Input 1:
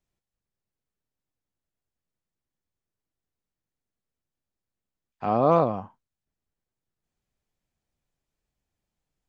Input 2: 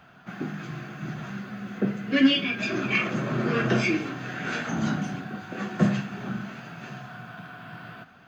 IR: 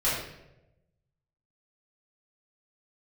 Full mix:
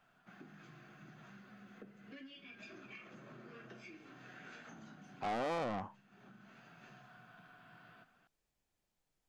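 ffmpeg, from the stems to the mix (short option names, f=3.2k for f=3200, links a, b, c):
-filter_complex "[0:a]alimiter=limit=-17.5dB:level=0:latency=1:release=116,asoftclip=type=tanh:threshold=-32.5dB,volume=0dB,asplit=2[a][b];[1:a]acompressor=threshold=-32dB:ratio=10,volume=-17dB[c];[b]apad=whole_len=364806[d];[c][d]sidechaincompress=threshold=-46dB:ratio=8:attack=16:release=1020[e];[a][e]amix=inputs=2:normalize=0,equalizer=f=65:w=0.35:g=-6.5"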